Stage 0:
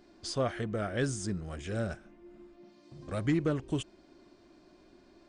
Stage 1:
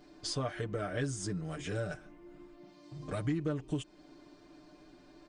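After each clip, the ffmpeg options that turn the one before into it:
-af "aecho=1:1:6.7:0.86,acompressor=threshold=-34dB:ratio=2.5"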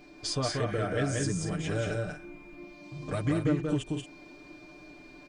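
-filter_complex "[0:a]aeval=exprs='val(0)+0.000794*sin(2*PI*2400*n/s)':c=same,asplit=2[a][b];[b]aecho=0:1:183.7|227.4:0.708|0.316[c];[a][c]amix=inputs=2:normalize=0,volume=4dB"

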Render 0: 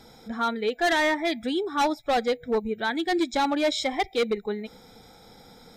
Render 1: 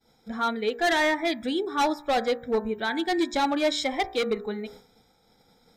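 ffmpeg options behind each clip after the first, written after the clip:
-af "bandreject=f=59.09:t=h:w=4,bandreject=f=118.18:t=h:w=4,bandreject=f=177.27:t=h:w=4,bandreject=f=236.36:t=h:w=4,bandreject=f=295.45:t=h:w=4,bandreject=f=354.54:t=h:w=4,bandreject=f=413.63:t=h:w=4,bandreject=f=472.72:t=h:w=4,bandreject=f=531.81:t=h:w=4,bandreject=f=590.9:t=h:w=4,bandreject=f=649.99:t=h:w=4,bandreject=f=709.08:t=h:w=4,bandreject=f=768.17:t=h:w=4,bandreject=f=827.26:t=h:w=4,bandreject=f=886.35:t=h:w=4,bandreject=f=945.44:t=h:w=4,bandreject=f=1.00453k:t=h:w=4,bandreject=f=1.06362k:t=h:w=4,bandreject=f=1.12271k:t=h:w=4,bandreject=f=1.1818k:t=h:w=4,bandreject=f=1.24089k:t=h:w=4,bandreject=f=1.29998k:t=h:w=4,bandreject=f=1.35907k:t=h:w=4,bandreject=f=1.41816k:t=h:w=4,bandreject=f=1.47725k:t=h:w=4,bandreject=f=1.53634k:t=h:w=4,bandreject=f=1.59543k:t=h:w=4,bandreject=f=1.65452k:t=h:w=4,bandreject=f=1.71361k:t=h:w=4,bandreject=f=1.7727k:t=h:w=4,bandreject=f=1.83179k:t=h:w=4,bandreject=f=1.89088k:t=h:w=4,agate=range=-33dB:threshold=-42dB:ratio=3:detection=peak"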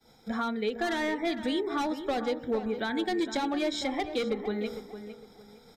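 -filter_complex "[0:a]acrossover=split=110|320[a][b][c];[a]acompressor=threshold=-55dB:ratio=4[d];[b]acompressor=threshold=-38dB:ratio=4[e];[c]acompressor=threshold=-36dB:ratio=4[f];[d][e][f]amix=inputs=3:normalize=0,asplit=2[g][h];[h]adelay=457,lowpass=f=2.7k:p=1,volume=-10.5dB,asplit=2[i][j];[j]adelay=457,lowpass=f=2.7k:p=1,volume=0.29,asplit=2[k][l];[l]adelay=457,lowpass=f=2.7k:p=1,volume=0.29[m];[i][k][m]amix=inputs=3:normalize=0[n];[g][n]amix=inputs=2:normalize=0,volume=4dB"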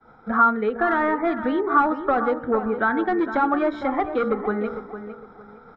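-af "lowpass=f=1.3k:t=q:w=5.4,volume=6dB"

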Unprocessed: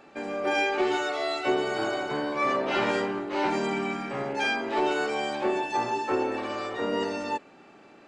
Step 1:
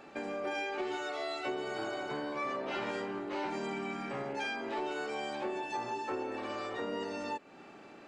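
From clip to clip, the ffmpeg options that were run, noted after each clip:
-af "acompressor=threshold=-37dB:ratio=3"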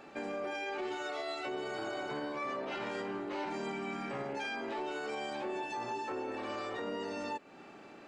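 -af "alimiter=level_in=6dB:limit=-24dB:level=0:latency=1:release=15,volume=-6dB"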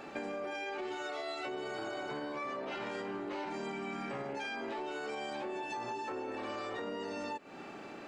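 -af "acompressor=threshold=-42dB:ratio=6,volume=5.5dB"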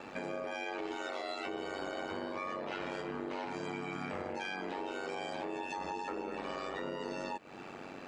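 -af "aeval=exprs='val(0)*sin(2*PI*47*n/s)':c=same,volume=3dB"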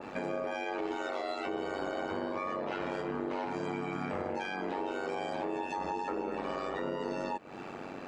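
-af "adynamicequalizer=threshold=0.002:dfrequency=1700:dqfactor=0.7:tfrequency=1700:tqfactor=0.7:attack=5:release=100:ratio=0.375:range=3:mode=cutabove:tftype=highshelf,volume=4.5dB"

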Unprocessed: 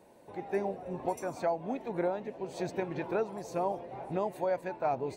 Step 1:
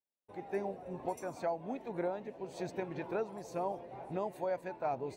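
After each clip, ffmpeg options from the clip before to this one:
-af "agate=range=-42dB:threshold=-49dB:ratio=16:detection=peak,volume=-4.5dB"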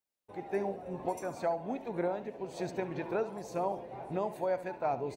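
-af "aecho=1:1:70|140|210:0.2|0.0599|0.018,volume=3dB"

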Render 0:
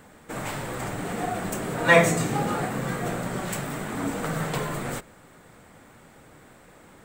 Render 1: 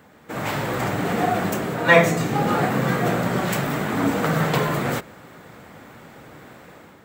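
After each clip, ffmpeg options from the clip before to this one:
-af "highpass=77,equalizer=f=8.7k:w=1.9:g=-10.5,dynaudnorm=f=110:g=7:m=8dB"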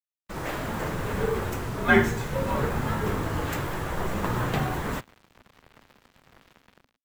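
-af "bass=f=250:g=-4,treble=f=4k:g=-5,acrusher=bits=5:mix=0:aa=0.5,afreqshift=-280,volume=-4.5dB"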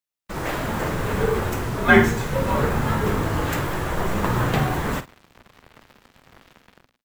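-filter_complex "[0:a]asplit=2[a][b];[b]adelay=49,volume=-13.5dB[c];[a][c]amix=inputs=2:normalize=0,volume=5dB"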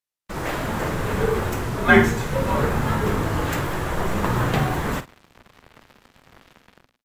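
-af "aresample=32000,aresample=44100"

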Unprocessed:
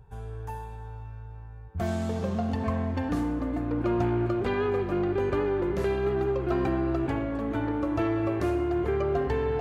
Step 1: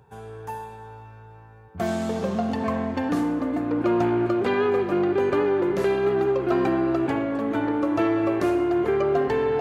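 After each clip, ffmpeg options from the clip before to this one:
-af "highpass=180,volume=5.5dB"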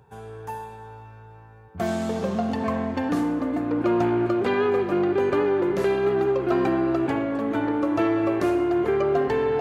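-af anull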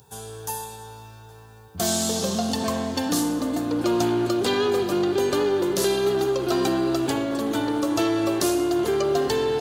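-filter_complex "[0:a]aexciter=amount=7:drive=6.9:freq=3.3k,asplit=2[a][b];[b]asoftclip=type=tanh:threshold=-21dB,volume=-6dB[c];[a][c]amix=inputs=2:normalize=0,asplit=2[d][e];[e]adelay=816.3,volume=-16dB,highshelf=f=4k:g=-18.4[f];[d][f]amix=inputs=2:normalize=0,volume=-3dB"

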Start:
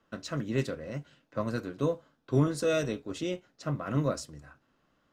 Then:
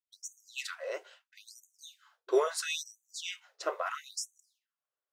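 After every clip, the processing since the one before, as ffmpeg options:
-af "agate=range=-33dB:threshold=-53dB:ratio=3:detection=peak,afftfilt=real='re*gte(b*sr/1024,340*pow(6000/340,0.5+0.5*sin(2*PI*0.75*pts/sr)))':imag='im*gte(b*sr/1024,340*pow(6000/340,0.5+0.5*sin(2*PI*0.75*pts/sr)))':win_size=1024:overlap=0.75,volume=5dB"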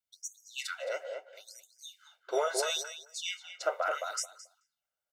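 -filter_complex "[0:a]aecho=1:1:1.4:0.71,asplit=2[a][b];[b]adelay=218,lowpass=f=1.3k:p=1,volume=-3.5dB,asplit=2[c][d];[d]adelay=218,lowpass=f=1.3k:p=1,volume=0.19,asplit=2[e][f];[f]adelay=218,lowpass=f=1.3k:p=1,volume=0.19[g];[c][e][g]amix=inputs=3:normalize=0[h];[a][h]amix=inputs=2:normalize=0"

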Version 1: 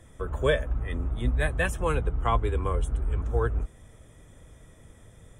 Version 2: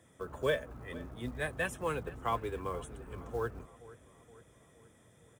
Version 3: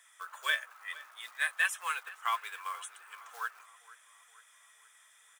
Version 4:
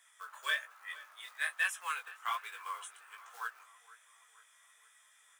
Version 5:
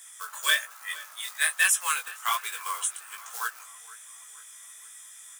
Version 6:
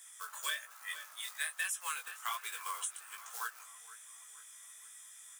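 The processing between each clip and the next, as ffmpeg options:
-filter_complex "[0:a]highpass=140,acrusher=bits=7:mode=log:mix=0:aa=0.000001,asplit=2[a][b];[b]adelay=469,lowpass=f=4k:p=1,volume=-18.5dB,asplit=2[c][d];[d]adelay=469,lowpass=f=4k:p=1,volume=0.54,asplit=2[e][f];[f]adelay=469,lowpass=f=4k:p=1,volume=0.54,asplit=2[g][h];[h]adelay=469,lowpass=f=4k:p=1,volume=0.54,asplit=2[i][j];[j]adelay=469,lowpass=f=4k:p=1,volume=0.54[k];[a][c][e][g][i][k]amix=inputs=6:normalize=0,volume=-6.5dB"
-af "highpass=f=1.2k:w=0.5412,highpass=f=1.2k:w=1.3066,volume=8dB"
-filter_complex "[0:a]flanger=delay=16:depth=6.2:speed=1.2,acrossover=split=830|1600|7100[a][b][c][d];[b]volume=33.5dB,asoftclip=hard,volume=-33.5dB[e];[a][e][c][d]amix=inputs=4:normalize=0"
-af "bass=f=250:g=4,treble=f=4k:g=14,volume=7.5dB"
-af "acompressor=threshold=-28dB:ratio=4,volume=-6.5dB"

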